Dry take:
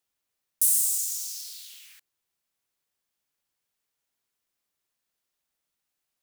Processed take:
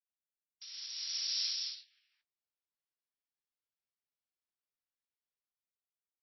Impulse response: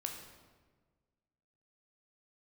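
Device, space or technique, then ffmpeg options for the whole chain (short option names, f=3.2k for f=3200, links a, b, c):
low-bitrate web radio: -filter_complex "[0:a]agate=range=-33dB:threshold=-39dB:ratio=16:detection=peak,asplit=3[a][b][c];[a]afade=t=out:st=0.7:d=0.02[d];[b]lowpass=6.8k,afade=t=in:st=0.7:d=0.02,afade=t=out:st=1.31:d=0.02[e];[c]afade=t=in:st=1.31:d=0.02[f];[d][e][f]amix=inputs=3:normalize=0,aecho=1:1:60|78|135|211|219|236:0.422|0.376|0.211|0.266|0.562|0.133,dynaudnorm=f=240:g=9:m=15dB,alimiter=limit=-15dB:level=0:latency=1:release=320" -ar 16000 -c:a libmp3lame -b:a 24k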